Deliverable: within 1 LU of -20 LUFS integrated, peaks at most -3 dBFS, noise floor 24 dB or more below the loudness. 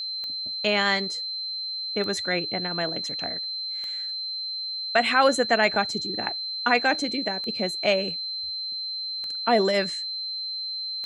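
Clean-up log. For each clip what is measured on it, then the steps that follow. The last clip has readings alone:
clicks found 7; steady tone 4.1 kHz; tone level -29 dBFS; loudness -25.0 LUFS; peak level -6.5 dBFS; loudness target -20.0 LUFS
-> de-click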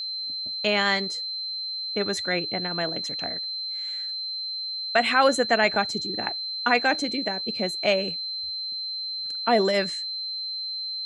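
clicks found 0; steady tone 4.1 kHz; tone level -29 dBFS
-> band-stop 4.1 kHz, Q 30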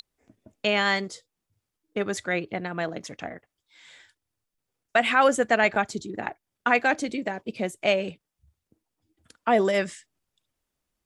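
steady tone not found; loudness -25.5 LUFS; peak level -7.0 dBFS; loudness target -20.0 LUFS
-> trim +5.5 dB; peak limiter -3 dBFS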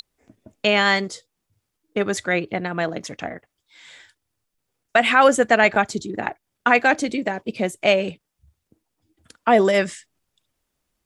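loudness -20.0 LUFS; peak level -3.0 dBFS; noise floor -79 dBFS

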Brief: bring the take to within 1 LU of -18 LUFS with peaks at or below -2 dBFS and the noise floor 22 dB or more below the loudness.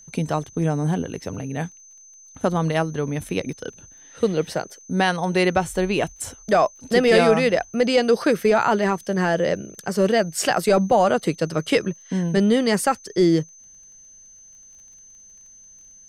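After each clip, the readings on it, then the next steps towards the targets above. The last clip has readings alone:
tick rate 20 per s; steady tone 6.2 kHz; tone level -45 dBFS; loudness -21.5 LUFS; peak level -4.5 dBFS; loudness target -18.0 LUFS
-> de-click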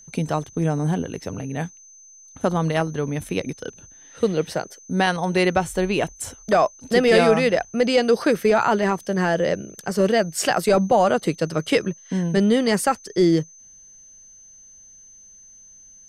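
tick rate 0.062 per s; steady tone 6.2 kHz; tone level -45 dBFS
-> band-stop 6.2 kHz, Q 30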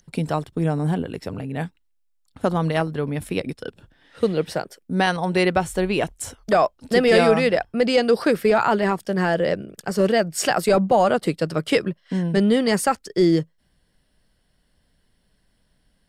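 steady tone not found; loudness -21.5 LUFS; peak level -4.0 dBFS; loudness target -18.0 LUFS
-> trim +3.5 dB; peak limiter -2 dBFS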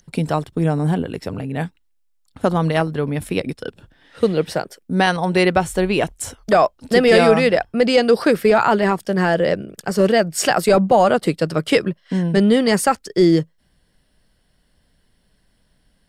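loudness -18.0 LUFS; peak level -2.0 dBFS; noise floor -62 dBFS

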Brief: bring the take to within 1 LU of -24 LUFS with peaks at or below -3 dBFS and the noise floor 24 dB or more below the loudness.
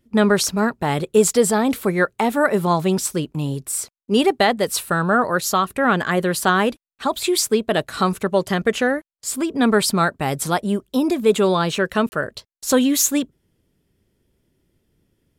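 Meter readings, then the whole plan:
dropouts 1; longest dropout 30 ms; loudness -19.5 LUFS; peak level -4.0 dBFS; loudness target -24.0 LUFS
-> interpolate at 12.09 s, 30 ms; trim -4.5 dB

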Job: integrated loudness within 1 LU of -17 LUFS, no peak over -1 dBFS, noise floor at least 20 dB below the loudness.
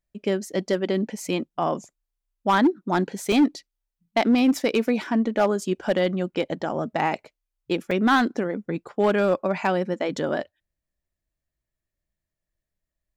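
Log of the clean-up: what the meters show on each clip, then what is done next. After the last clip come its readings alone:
clipped samples 0.7%; clipping level -13.0 dBFS; dropouts 2; longest dropout 3.1 ms; loudness -24.0 LUFS; peak level -13.0 dBFS; loudness target -17.0 LUFS
-> clip repair -13 dBFS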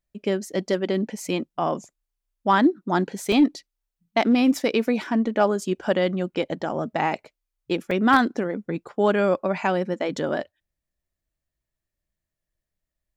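clipped samples 0.0%; dropouts 2; longest dropout 3.1 ms
-> interpolate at 3.32/7.91 s, 3.1 ms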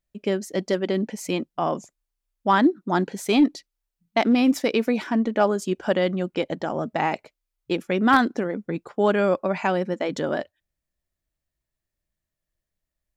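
dropouts 0; loudness -23.5 LUFS; peak level -4.5 dBFS; loudness target -17.0 LUFS
-> trim +6.5 dB; peak limiter -1 dBFS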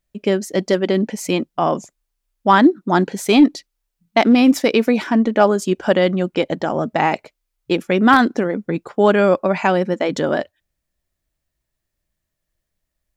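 loudness -17.0 LUFS; peak level -1.0 dBFS; noise floor -79 dBFS

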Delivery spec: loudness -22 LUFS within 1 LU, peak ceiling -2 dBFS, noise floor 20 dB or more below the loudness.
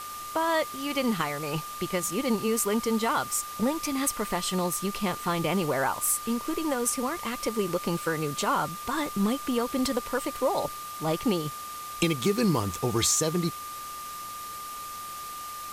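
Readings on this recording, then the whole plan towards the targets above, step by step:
steady tone 1.2 kHz; tone level -37 dBFS; noise floor -39 dBFS; noise floor target -49 dBFS; loudness -28.5 LUFS; peak level -10.5 dBFS; loudness target -22.0 LUFS
-> band-stop 1.2 kHz, Q 30; noise reduction 10 dB, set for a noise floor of -39 dBFS; trim +6.5 dB

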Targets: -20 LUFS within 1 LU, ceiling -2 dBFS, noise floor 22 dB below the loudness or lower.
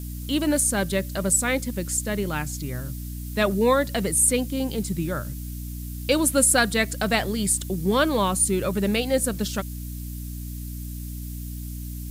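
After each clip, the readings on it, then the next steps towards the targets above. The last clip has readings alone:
hum 60 Hz; highest harmonic 300 Hz; hum level -31 dBFS; noise floor -34 dBFS; noise floor target -45 dBFS; loudness -23.0 LUFS; peak level -6.5 dBFS; loudness target -20.0 LUFS
-> hum notches 60/120/180/240/300 Hz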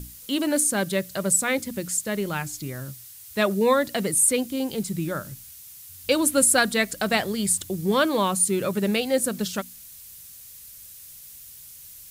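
hum not found; noise floor -45 dBFS; noise floor target -46 dBFS
-> noise print and reduce 6 dB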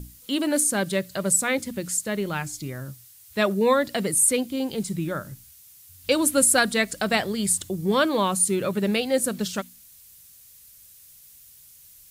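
noise floor -51 dBFS; loudness -23.0 LUFS; peak level -6.5 dBFS; loudness target -20.0 LUFS
-> trim +3 dB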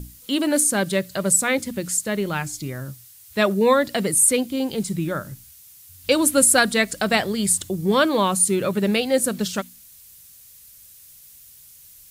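loudness -20.0 LUFS; peak level -3.5 dBFS; noise floor -48 dBFS

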